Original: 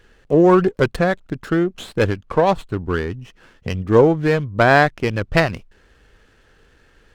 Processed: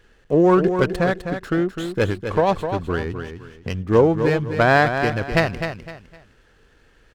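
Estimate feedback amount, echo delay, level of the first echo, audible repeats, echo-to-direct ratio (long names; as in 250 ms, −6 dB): 29%, 255 ms, −8.0 dB, 3, −7.5 dB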